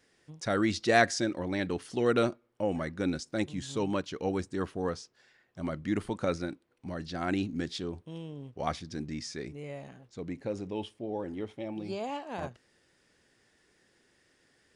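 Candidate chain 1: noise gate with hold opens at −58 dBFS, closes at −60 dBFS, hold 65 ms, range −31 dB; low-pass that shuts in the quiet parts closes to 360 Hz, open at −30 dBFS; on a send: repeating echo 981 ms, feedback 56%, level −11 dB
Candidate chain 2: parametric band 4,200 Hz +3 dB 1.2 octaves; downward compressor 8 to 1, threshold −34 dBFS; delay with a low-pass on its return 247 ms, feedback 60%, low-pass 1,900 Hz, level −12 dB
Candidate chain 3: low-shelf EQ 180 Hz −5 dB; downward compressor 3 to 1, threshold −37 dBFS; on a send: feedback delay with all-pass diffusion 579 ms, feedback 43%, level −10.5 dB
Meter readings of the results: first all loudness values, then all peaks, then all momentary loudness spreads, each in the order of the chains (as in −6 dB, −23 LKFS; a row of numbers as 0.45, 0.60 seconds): −33.0, −39.5, −40.5 LKFS; −9.5, −21.5, −21.5 dBFS; 19, 7, 12 LU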